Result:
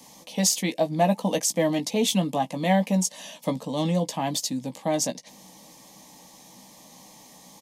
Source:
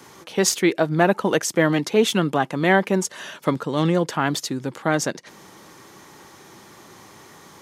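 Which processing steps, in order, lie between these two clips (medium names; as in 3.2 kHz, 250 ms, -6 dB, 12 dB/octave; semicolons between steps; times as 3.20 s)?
tone controls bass +2 dB, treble +4 dB; static phaser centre 380 Hz, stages 6; doubling 16 ms -8 dB; loudness maximiser +6 dB; trim -8.5 dB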